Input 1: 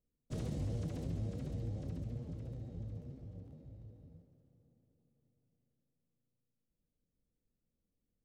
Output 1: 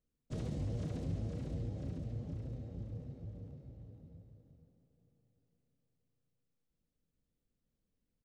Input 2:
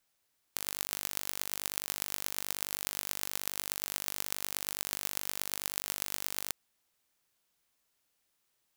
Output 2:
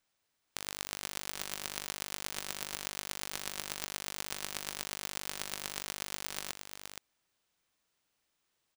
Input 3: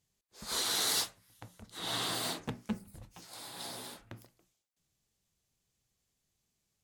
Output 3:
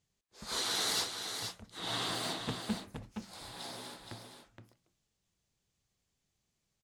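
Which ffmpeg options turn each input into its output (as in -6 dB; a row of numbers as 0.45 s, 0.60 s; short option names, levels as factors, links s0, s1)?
-af "equalizer=f=16000:w=0.53:g=-13,aecho=1:1:470:0.447"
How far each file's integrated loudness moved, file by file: 0.0 LU, -3.5 LU, -2.0 LU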